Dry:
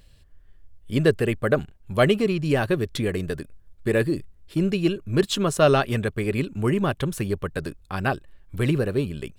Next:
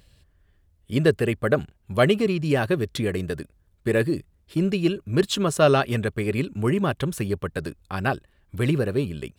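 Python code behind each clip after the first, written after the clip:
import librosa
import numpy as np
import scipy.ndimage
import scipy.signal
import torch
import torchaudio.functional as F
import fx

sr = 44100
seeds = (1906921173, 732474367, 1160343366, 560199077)

y = scipy.signal.sosfilt(scipy.signal.butter(2, 43.0, 'highpass', fs=sr, output='sos'), x)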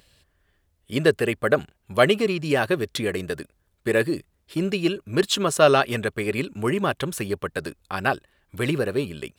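y = fx.low_shelf(x, sr, hz=240.0, db=-11.5)
y = y * librosa.db_to_amplitude(3.5)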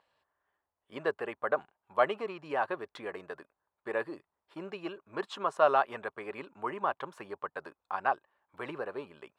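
y = fx.bandpass_q(x, sr, hz=940.0, q=2.8)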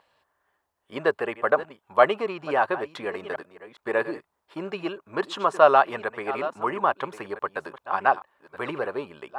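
y = fx.reverse_delay(x, sr, ms=672, wet_db=-14.0)
y = y * librosa.db_to_amplitude(8.5)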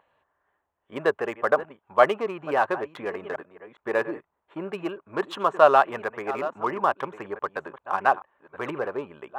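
y = fx.wiener(x, sr, points=9)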